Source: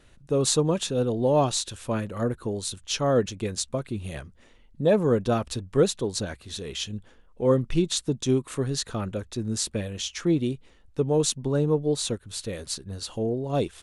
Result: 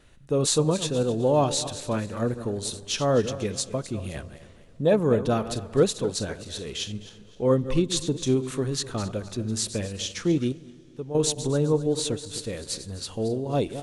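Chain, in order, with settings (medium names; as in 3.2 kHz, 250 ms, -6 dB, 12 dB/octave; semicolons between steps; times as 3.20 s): backward echo that repeats 129 ms, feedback 53%, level -12 dB; 10.52–11.15 s: feedback comb 170 Hz, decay 1.9 s, mix 70%; on a send: reverberation RT60 5.2 s, pre-delay 5 ms, DRR 23.5 dB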